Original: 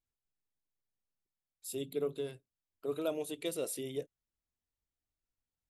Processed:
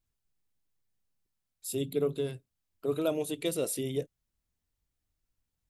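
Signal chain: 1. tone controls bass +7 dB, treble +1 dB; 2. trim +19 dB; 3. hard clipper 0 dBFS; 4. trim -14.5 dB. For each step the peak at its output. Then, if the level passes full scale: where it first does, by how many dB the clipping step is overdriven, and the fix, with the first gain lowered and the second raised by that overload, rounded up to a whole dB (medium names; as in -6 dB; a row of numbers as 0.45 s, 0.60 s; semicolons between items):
-22.0 dBFS, -3.0 dBFS, -3.0 dBFS, -17.5 dBFS; nothing clips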